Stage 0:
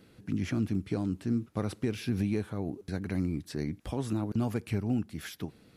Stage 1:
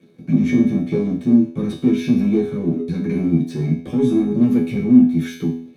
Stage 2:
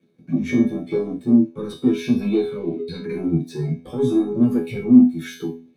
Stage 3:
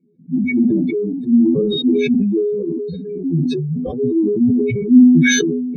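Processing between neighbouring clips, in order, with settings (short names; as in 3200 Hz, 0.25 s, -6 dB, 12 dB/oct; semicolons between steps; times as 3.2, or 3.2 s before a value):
sample leveller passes 3; resonator 83 Hz, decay 0.53 s, harmonics all, mix 90%; reverb, pre-delay 3 ms, DRR -2 dB; gain -1 dB
spectral noise reduction 11 dB; spectral gain 2.22–3.06, 1900–5000 Hz +9 dB
spectral contrast raised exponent 2.4; dynamic EQ 880 Hz, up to -5 dB, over -41 dBFS, Q 1.4; sustainer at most 25 dB/s; gain +1.5 dB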